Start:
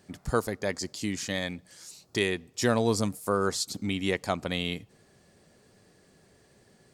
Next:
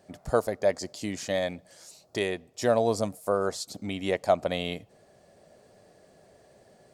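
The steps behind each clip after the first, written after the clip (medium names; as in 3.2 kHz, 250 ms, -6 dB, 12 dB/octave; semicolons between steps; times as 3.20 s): peaking EQ 630 Hz +14 dB 0.75 oct; gain riding 2 s; trim -5 dB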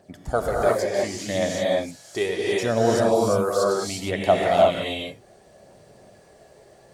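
phaser 0.7 Hz, delay 2.8 ms, feedback 46%; gated-style reverb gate 380 ms rising, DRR -4 dB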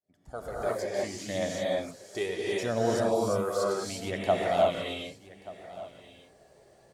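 fade-in on the opening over 1.00 s; delay 1182 ms -18 dB; trim -7 dB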